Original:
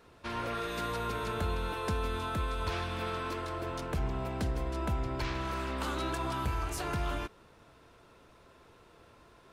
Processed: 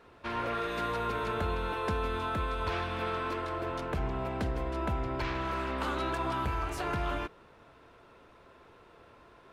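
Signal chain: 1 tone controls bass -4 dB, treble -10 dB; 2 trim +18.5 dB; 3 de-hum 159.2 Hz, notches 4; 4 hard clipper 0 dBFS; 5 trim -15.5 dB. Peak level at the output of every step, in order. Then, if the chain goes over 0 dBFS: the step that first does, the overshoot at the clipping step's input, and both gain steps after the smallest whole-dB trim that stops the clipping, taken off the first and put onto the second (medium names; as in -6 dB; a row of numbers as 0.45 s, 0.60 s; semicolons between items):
-24.5 dBFS, -6.0 dBFS, -6.0 dBFS, -6.0 dBFS, -21.5 dBFS; nothing clips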